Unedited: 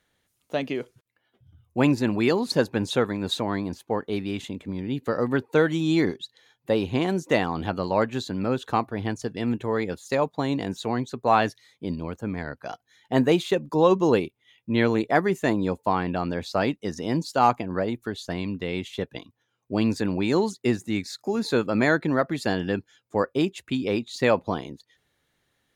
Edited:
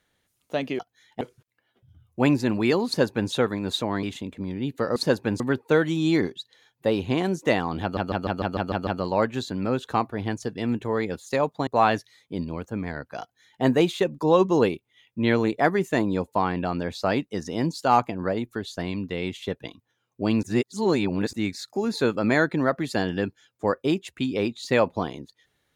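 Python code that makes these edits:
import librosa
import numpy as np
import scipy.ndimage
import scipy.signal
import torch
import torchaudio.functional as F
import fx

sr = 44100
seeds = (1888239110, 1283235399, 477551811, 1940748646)

y = fx.edit(x, sr, fx.duplicate(start_s=2.45, length_s=0.44, to_s=5.24),
    fx.cut(start_s=3.61, length_s=0.7),
    fx.stutter(start_s=7.66, slice_s=0.15, count=8),
    fx.cut(start_s=10.46, length_s=0.72),
    fx.duplicate(start_s=12.72, length_s=0.42, to_s=0.79),
    fx.reverse_span(start_s=19.94, length_s=0.9), tone=tone)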